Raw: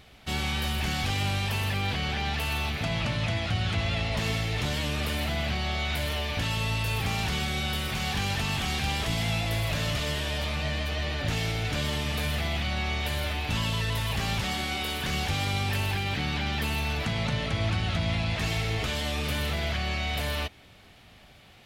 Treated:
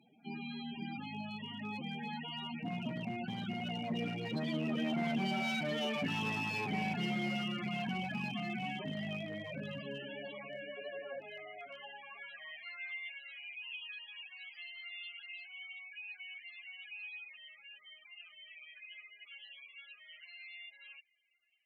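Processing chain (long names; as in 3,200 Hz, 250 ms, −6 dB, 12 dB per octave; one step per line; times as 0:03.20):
source passing by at 0:05.93, 23 m/s, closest 26 metres
high-pass filter 120 Hz 24 dB per octave
notch filter 3,600 Hz, Q 12
in parallel at −3 dB: downward compressor 6 to 1, threshold −57 dBFS, peak gain reduction 26 dB
on the sum: soft clipping −25 dBFS, distortion −20 dB
spectral peaks only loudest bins 16
asymmetric clip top −37 dBFS
high-pass filter sweep 220 Hz → 2,500 Hz, 0:09.85–0:13.35
level +1 dB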